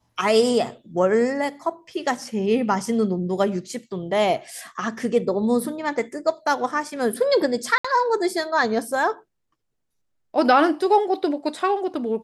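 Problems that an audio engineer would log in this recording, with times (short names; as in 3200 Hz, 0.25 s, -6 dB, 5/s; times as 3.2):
7.78–7.84 gap 65 ms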